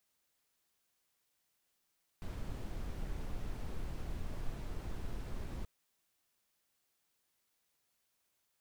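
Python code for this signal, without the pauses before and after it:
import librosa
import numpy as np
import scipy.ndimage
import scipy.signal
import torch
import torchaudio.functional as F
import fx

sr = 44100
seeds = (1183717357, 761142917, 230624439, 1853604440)

y = fx.noise_colour(sr, seeds[0], length_s=3.43, colour='brown', level_db=-39.0)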